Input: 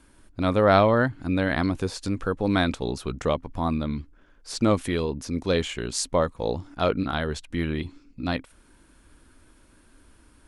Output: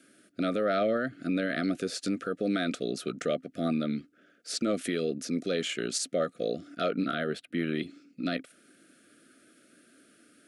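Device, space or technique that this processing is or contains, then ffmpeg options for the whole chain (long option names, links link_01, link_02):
PA system with an anti-feedback notch: -filter_complex "[0:a]highpass=frequency=180:width=0.5412,highpass=frequency=180:width=1.3066,asuperstop=centerf=930:order=20:qfactor=2,alimiter=limit=-19.5dB:level=0:latency=1:release=80,asettb=1/sr,asplit=3[link_01][link_02][link_03];[link_01]atrim=end=7.134[link_04];[link_02]atrim=start=7.13:end=7.67,asetpts=PTS-STARTPTS,afade=type=in:duration=0.004:curve=qsin,afade=type=out:start_time=0.536:duration=0.004:curve=qsin,equalizer=frequency=6500:width=1.3:gain=-14.5[link_05];[link_03]atrim=start=7.666[link_06];[link_04][link_05]acrossfade=duration=0.004:curve1=hsin:curve2=qsin[link_07];[link_07][link_06]acrossfade=duration=0.004:curve1=qsin:curve2=hsin"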